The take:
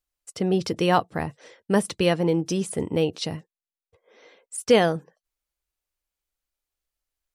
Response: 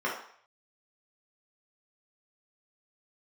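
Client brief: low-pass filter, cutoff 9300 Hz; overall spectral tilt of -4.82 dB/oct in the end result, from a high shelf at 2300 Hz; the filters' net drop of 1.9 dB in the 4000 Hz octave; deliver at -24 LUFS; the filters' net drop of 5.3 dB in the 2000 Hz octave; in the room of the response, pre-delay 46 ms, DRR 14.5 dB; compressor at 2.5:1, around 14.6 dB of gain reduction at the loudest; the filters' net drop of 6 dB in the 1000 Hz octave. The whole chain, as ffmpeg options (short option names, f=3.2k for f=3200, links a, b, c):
-filter_complex "[0:a]lowpass=9.3k,equalizer=f=1k:t=o:g=-8.5,equalizer=f=2k:t=o:g=-5.5,highshelf=f=2.3k:g=4.5,equalizer=f=4k:t=o:g=-4,acompressor=threshold=-36dB:ratio=2.5,asplit=2[a][b];[1:a]atrim=start_sample=2205,adelay=46[c];[b][c]afir=irnorm=-1:irlink=0,volume=-24.5dB[d];[a][d]amix=inputs=2:normalize=0,volume=12.5dB"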